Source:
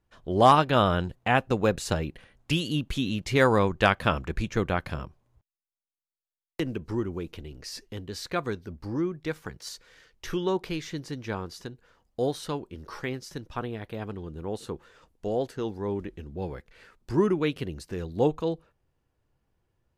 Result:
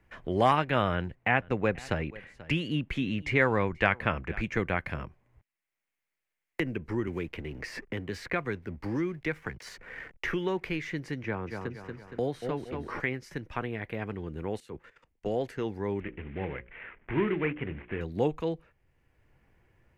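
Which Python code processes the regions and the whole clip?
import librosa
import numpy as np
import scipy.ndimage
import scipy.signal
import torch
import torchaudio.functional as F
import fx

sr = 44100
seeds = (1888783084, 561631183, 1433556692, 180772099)

y = fx.chain(x, sr, fx.high_shelf(hz=7800.0, db=-11.0),
    fx.echo_single(ms=485, db=-23.5), at=(0.93, 4.43))
y = fx.chain(y, sr, fx.backlash(play_db=-54.0),
    fx.band_squash(depth_pct=40), at=(7.07, 10.64))
y = fx.chain(y, sr, fx.high_shelf(hz=2300.0, db=-10.0),
    fx.echo_feedback(ms=233, feedback_pct=32, wet_db=-8.0),
    fx.band_squash(depth_pct=40), at=(11.23, 13.0))
y = fx.chain(y, sr, fx.level_steps(step_db=14),
    fx.band_widen(depth_pct=100), at=(14.6, 15.26))
y = fx.chain(y, sr, fx.cvsd(bps=16000),
    fx.hum_notches(base_hz=60, count=9), at=(16.0, 18.01))
y = fx.curve_eq(y, sr, hz=(1300.0, 2100.0, 3700.0), db=(0, 10, -7))
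y = fx.band_squash(y, sr, depth_pct=40)
y = y * librosa.db_to_amplitude(-2.5)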